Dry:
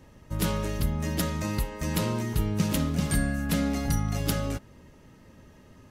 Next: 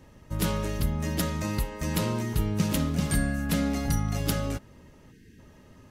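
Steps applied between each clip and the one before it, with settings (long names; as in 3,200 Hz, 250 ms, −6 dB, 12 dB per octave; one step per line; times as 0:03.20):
gain on a spectral selection 0:05.12–0:05.39, 480–1,500 Hz −23 dB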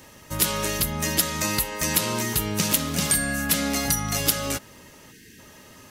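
spectral tilt +3 dB per octave
downward compressor 2.5 to 1, threshold −29 dBFS, peak gain reduction 8 dB
level +8.5 dB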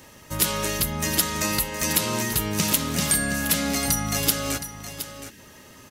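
single-tap delay 718 ms −11.5 dB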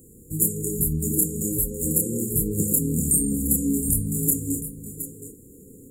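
multi-voice chorus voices 4, 1.1 Hz, delay 28 ms, depth 4 ms
delay with a band-pass on its return 729 ms, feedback 58%, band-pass 1,100 Hz, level −7 dB
brick-wall band-stop 520–6,800 Hz
level +5.5 dB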